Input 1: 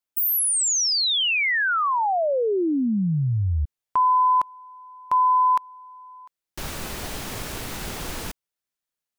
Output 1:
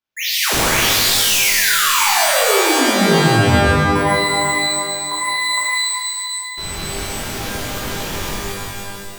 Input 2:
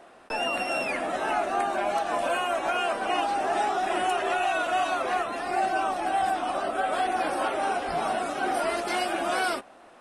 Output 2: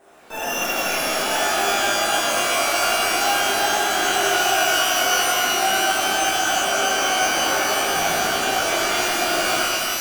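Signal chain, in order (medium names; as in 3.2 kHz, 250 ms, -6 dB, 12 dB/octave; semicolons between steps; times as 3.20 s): sample-and-hold 5×; pitch-shifted reverb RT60 2.2 s, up +12 st, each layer -2 dB, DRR -9.5 dB; trim -6 dB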